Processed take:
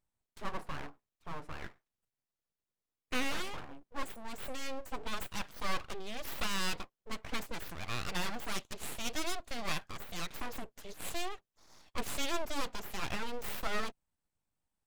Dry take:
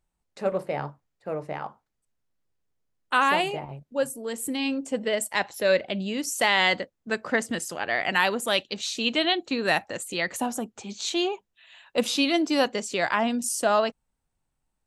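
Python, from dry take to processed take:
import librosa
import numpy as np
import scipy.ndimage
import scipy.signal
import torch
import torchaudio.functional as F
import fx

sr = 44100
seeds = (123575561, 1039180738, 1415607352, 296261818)

y = fx.diode_clip(x, sr, knee_db=-24.5)
y = np.abs(y)
y = y * 10.0 ** (-6.0 / 20.0)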